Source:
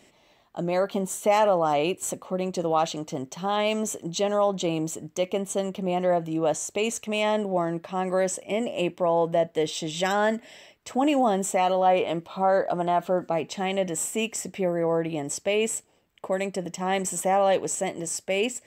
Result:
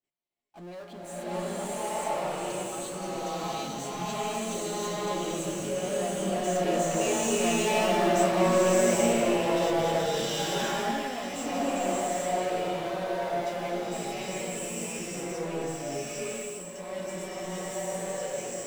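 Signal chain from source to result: Doppler pass-by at 7.87, 6 m/s, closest 3.2 m; LPF 11000 Hz; resonator bank A#2 minor, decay 0.23 s; power-law curve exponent 0.5; gate -56 dBFS, range -39 dB; bloom reverb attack 0.78 s, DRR -10 dB

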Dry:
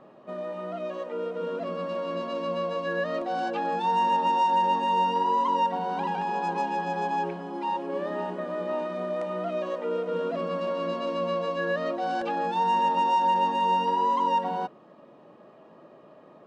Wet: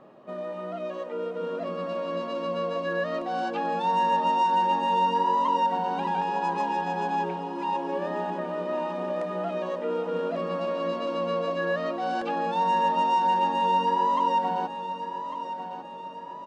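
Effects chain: feedback echo 1.15 s, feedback 49%, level -11 dB

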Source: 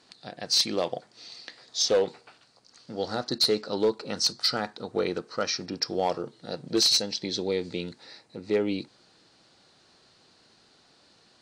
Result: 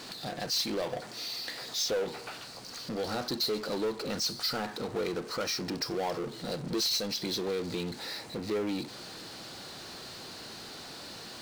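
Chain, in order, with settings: power-law curve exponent 0.5; compressor 1.5:1, threshold -29 dBFS, peak gain reduction 4.5 dB; gain -6 dB

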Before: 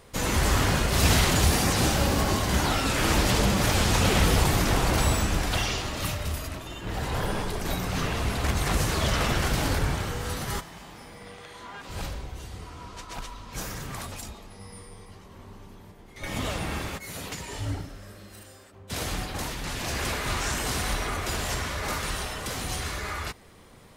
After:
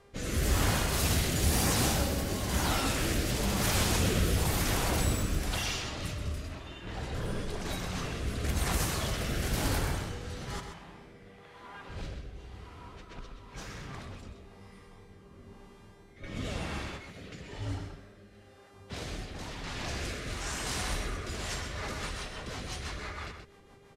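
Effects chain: low-pass opened by the level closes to 2200 Hz, open at -21 dBFS; high shelf 9400 Hz +9.5 dB; buzz 400 Hz, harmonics 31, -54 dBFS -6 dB/oct; rotary speaker horn 1 Hz, later 6 Hz, at 21.22; outdoor echo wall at 22 m, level -7 dB; gain -5 dB

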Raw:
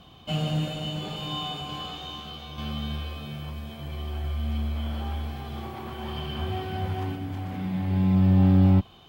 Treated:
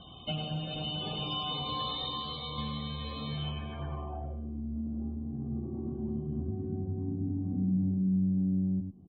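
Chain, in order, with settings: 1.5–3.36 ripple EQ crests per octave 1, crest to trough 10 dB; compressor 8:1, threshold -32 dBFS, peak gain reduction 16.5 dB; loudest bins only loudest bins 64; echo 0.101 s -7 dB; low-pass sweep 5400 Hz -> 260 Hz, 3.24–4.64; outdoor echo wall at 80 m, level -29 dB

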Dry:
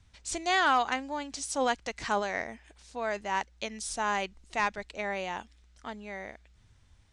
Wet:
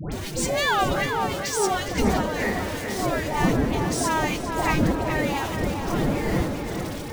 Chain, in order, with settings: zero-crossing step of -32 dBFS; wind noise 280 Hz -25 dBFS; in parallel at -5 dB: bit-crush 6-bit; on the sum: low shelf 220 Hz -3.5 dB; on a send at -16 dB: reverb, pre-delay 3 ms; on the sum: formant-preserving pitch shift +7.5 st; compressor 4:1, threshold -19 dBFS, peak gain reduction 9 dB; dispersion highs, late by 0.121 s, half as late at 1200 Hz; tape echo 0.423 s, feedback 65%, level -5 dB, low-pass 2500 Hz

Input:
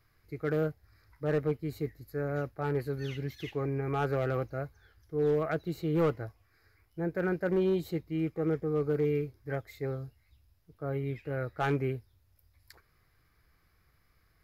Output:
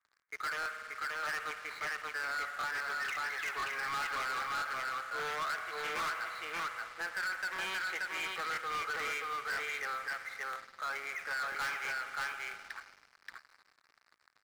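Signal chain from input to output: Wiener smoothing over 15 samples; HPF 1300 Hz 24 dB/oct; low-pass opened by the level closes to 2300 Hz, open at -45 dBFS; compressor 2.5:1, threshold -55 dBFS, peak gain reduction 14.5 dB; air absorption 200 m; on a send: echo 0.579 s -3.5 dB; on the sum: spring tank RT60 2.6 s, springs 51 ms, chirp 60 ms, DRR 12 dB; sample leveller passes 5; crackling interface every 0.99 s, samples 1024, repeat, from 0.61; gain +8.5 dB

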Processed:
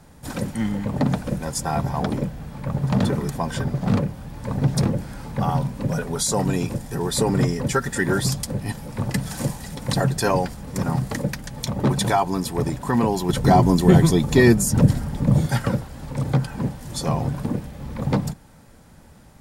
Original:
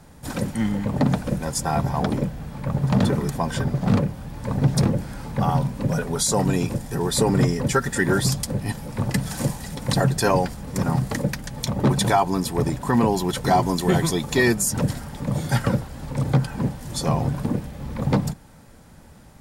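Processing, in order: 13.29–15.46 low shelf 430 Hz +10 dB; gain -1 dB

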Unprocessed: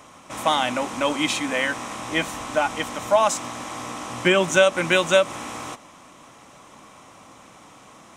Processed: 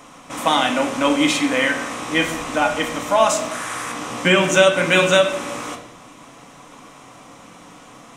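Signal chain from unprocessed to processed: 3.51–3.92 fifteen-band EQ 250 Hz -9 dB, 630 Hz -4 dB, 1600 Hz +9 dB, 10000 Hz +9 dB; on a send: reverb RT60 0.75 s, pre-delay 4 ms, DRR 2.5 dB; on the sum: gain +2.5 dB

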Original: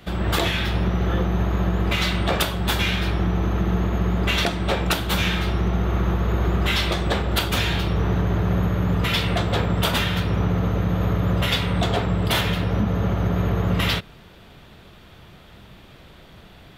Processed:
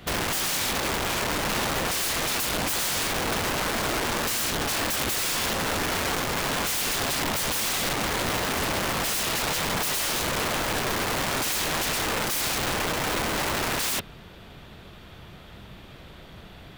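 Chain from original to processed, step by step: wrapped overs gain 23 dB; gain +1 dB

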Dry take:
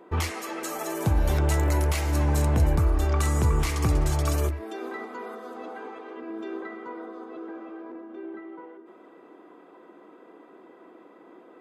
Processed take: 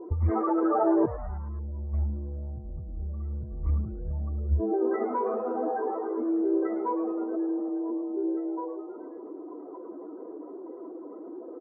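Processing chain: spectral contrast raised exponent 2.2; inverse Chebyshev low-pass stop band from 3300 Hz, stop band 50 dB; negative-ratio compressor -29 dBFS, ratio -0.5; frequency-shifting echo 0.107 s, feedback 55%, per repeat +140 Hz, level -16.5 dB; gain +3.5 dB

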